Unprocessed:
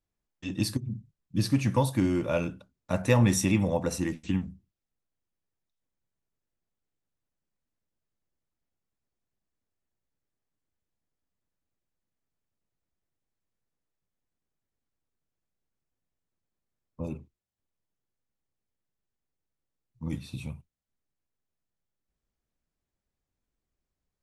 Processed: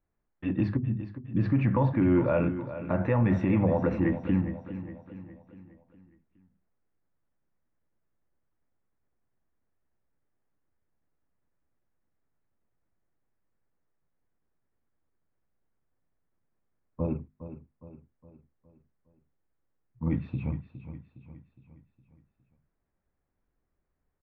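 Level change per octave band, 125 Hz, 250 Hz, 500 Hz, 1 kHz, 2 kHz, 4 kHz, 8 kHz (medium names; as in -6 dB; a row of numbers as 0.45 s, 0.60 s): +1.5 dB, +2.0 dB, +1.5 dB, +0.5 dB, -2.5 dB, under -15 dB, under -35 dB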